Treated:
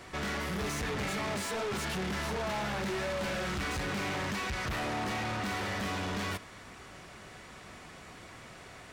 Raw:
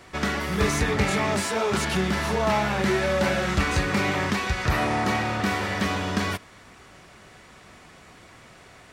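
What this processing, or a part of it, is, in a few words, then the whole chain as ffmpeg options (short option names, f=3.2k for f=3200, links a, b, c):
saturation between pre-emphasis and de-emphasis: -af "highshelf=f=8.1k:g=9.5,asoftclip=type=tanh:threshold=-32dB,highshelf=f=8.1k:g=-9.5"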